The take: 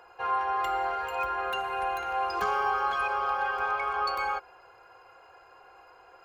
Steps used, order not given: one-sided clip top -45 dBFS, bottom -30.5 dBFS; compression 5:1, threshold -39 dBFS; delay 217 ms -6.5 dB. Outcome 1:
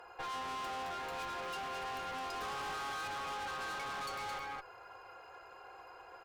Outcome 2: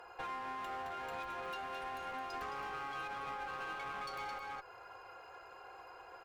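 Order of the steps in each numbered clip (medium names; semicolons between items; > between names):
delay > one-sided clip > compression; delay > compression > one-sided clip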